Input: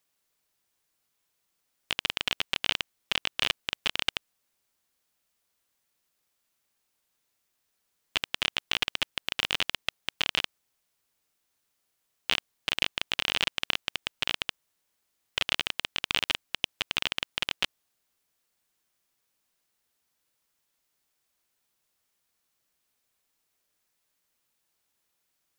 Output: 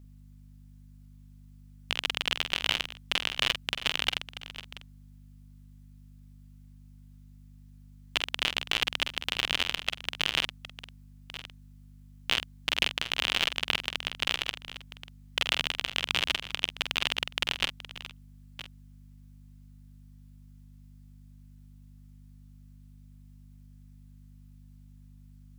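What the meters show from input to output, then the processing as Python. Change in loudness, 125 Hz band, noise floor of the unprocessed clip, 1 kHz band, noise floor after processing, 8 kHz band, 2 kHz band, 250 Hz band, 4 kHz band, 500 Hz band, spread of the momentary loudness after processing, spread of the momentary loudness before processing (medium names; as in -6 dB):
+0.5 dB, +5.5 dB, -78 dBFS, +1.0 dB, -52 dBFS, +1.0 dB, +1.0 dB, +2.0 dB, +1.0 dB, +1.0 dB, 18 LU, 5 LU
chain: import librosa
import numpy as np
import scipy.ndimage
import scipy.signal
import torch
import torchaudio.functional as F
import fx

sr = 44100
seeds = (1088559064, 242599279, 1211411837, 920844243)

y = fx.reverse_delay(x, sr, ms=604, wet_db=-14.0)
y = fx.add_hum(y, sr, base_hz=50, snr_db=15)
y = fx.doubler(y, sr, ms=47.0, db=-8.0)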